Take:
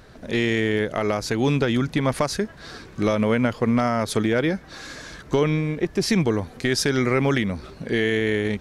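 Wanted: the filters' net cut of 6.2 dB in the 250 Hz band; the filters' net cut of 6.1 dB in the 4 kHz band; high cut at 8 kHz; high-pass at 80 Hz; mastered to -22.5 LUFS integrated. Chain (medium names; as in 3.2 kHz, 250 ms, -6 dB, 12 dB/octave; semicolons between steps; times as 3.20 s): high-pass 80 Hz; low-pass 8 kHz; peaking EQ 250 Hz -8 dB; peaking EQ 4 kHz -8 dB; trim +3.5 dB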